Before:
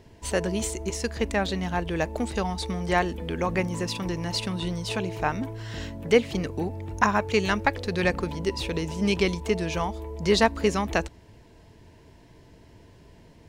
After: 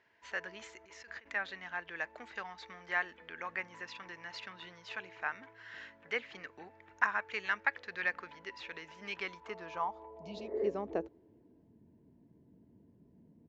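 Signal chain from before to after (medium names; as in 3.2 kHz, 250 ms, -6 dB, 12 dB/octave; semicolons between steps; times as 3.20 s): resampled via 16 kHz; 0.84–1.33 s: compressor with a negative ratio -35 dBFS, ratio -1; band-pass sweep 1.7 kHz -> 220 Hz, 9.13–11.80 s; 10.23–10.64 s: spectral replace 220–2200 Hz both; trim -3 dB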